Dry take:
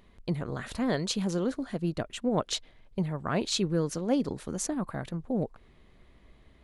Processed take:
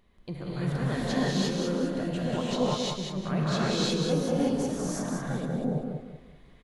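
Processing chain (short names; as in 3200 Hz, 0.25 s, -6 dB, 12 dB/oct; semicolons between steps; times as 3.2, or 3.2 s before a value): dynamic EQ 8100 Hz, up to -7 dB, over -52 dBFS, Q 1.6; on a send: feedback echo 0.191 s, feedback 33%, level -5.5 dB; on the sum: non-linear reverb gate 0.38 s rising, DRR -8 dB; gain -7 dB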